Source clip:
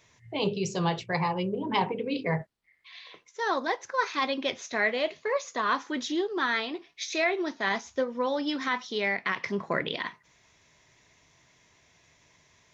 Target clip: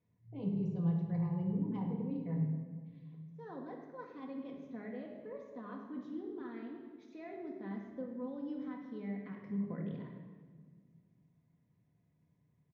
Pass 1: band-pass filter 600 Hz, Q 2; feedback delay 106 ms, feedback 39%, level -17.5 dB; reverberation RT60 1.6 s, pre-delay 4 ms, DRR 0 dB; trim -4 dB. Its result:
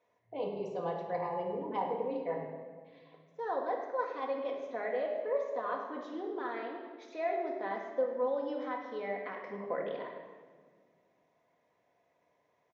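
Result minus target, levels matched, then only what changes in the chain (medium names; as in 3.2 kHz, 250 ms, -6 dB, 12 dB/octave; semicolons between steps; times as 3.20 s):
125 Hz band -19.0 dB
change: band-pass filter 150 Hz, Q 2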